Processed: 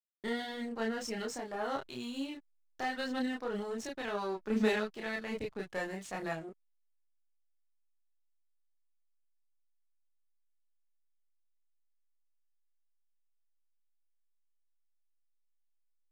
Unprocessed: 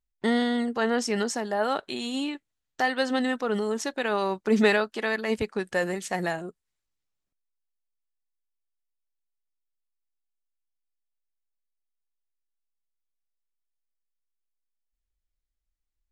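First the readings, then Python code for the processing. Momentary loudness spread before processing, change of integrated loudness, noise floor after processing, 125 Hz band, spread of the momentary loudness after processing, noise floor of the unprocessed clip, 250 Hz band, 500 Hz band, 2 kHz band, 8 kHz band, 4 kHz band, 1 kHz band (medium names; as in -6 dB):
8 LU, -10.0 dB, -74 dBFS, -9.0 dB, 8 LU, -83 dBFS, -9.5 dB, -10.0 dB, -10.5 dB, -11.0 dB, -10.0 dB, -10.0 dB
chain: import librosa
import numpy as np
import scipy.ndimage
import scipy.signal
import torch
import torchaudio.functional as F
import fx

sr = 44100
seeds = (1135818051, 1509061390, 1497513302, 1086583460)

y = fx.cheby_harmonics(x, sr, harmonics=(8,), levels_db=(-26,), full_scale_db=-8.5)
y = fx.backlash(y, sr, play_db=-39.0)
y = fx.chorus_voices(y, sr, voices=2, hz=0.13, base_ms=29, depth_ms=3.8, mix_pct=50)
y = y * librosa.db_to_amplitude(-7.0)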